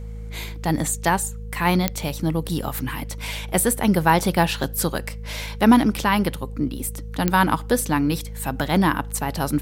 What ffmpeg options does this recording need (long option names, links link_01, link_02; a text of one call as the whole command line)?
ffmpeg -i in.wav -af "adeclick=threshold=4,bandreject=frequency=53.7:width_type=h:width=4,bandreject=frequency=107.4:width_type=h:width=4,bandreject=frequency=161.1:width_type=h:width=4,bandreject=frequency=214.8:width_type=h:width=4,bandreject=frequency=470:width=30" out.wav